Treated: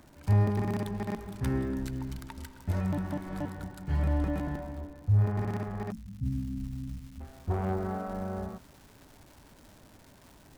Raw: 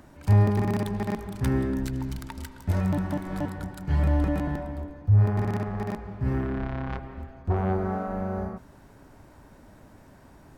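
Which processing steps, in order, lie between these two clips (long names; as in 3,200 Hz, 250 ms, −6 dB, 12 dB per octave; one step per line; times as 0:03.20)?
0:05.91–0:07.20: time-frequency box erased 290–5,000 Hz
surface crackle 190 per second −41 dBFS, from 0:06.25 560 per second
level −5 dB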